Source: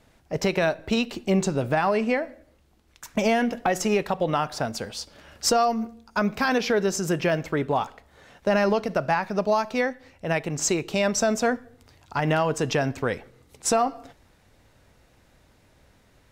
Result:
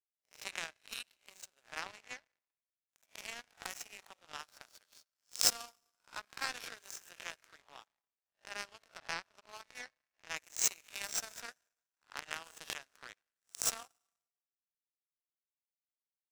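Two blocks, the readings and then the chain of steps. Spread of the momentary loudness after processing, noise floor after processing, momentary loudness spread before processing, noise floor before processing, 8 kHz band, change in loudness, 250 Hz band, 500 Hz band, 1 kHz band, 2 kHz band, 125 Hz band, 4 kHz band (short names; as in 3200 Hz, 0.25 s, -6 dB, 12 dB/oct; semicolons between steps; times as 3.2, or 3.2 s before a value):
22 LU, under -85 dBFS, 8 LU, -60 dBFS, -6.5 dB, -14.5 dB, -36.5 dB, -32.0 dB, -23.0 dB, -15.5 dB, -35.5 dB, -8.5 dB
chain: spectral swells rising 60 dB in 0.61 s; hard clip -11 dBFS, distortion -33 dB; HPF 1400 Hz 12 dB/oct; notch 4800 Hz, Q 19; Schroeder reverb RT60 3 s, combs from 28 ms, DRR 9.5 dB; power-law curve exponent 3; gain +5.5 dB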